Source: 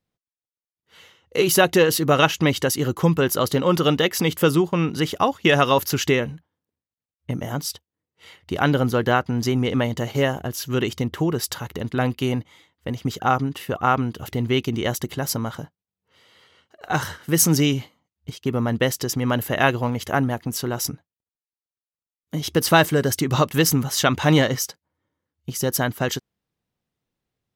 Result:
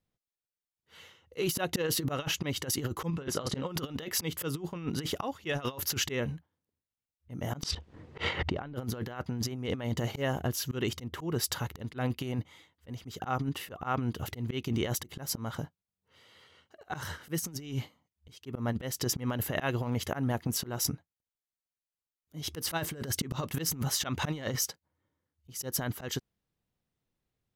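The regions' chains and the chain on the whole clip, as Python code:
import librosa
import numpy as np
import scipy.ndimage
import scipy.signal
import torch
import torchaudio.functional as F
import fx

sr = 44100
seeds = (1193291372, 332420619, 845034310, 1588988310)

y = fx.chain(x, sr, fx.lowpass(hz=9800.0, slope=24),
    fx.high_shelf(hz=7400.0, db=-6.0),
    fx.doubler(ms=30.0, db=-8.5), at=(3.08, 3.66))
y = fx.chain(y, sr, fx.spacing_loss(db_at_10k=28),
    fx.env_flatten(amount_pct=100), at=(7.63, 8.76))
y = fx.low_shelf(y, sr, hz=71.0, db=8.0)
y = fx.auto_swell(y, sr, attack_ms=200.0)
y = fx.over_compress(y, sr, threshold_db=-24.0, ratio=-0.5)
y = y * librosa.db_to_amplitude(-7.0)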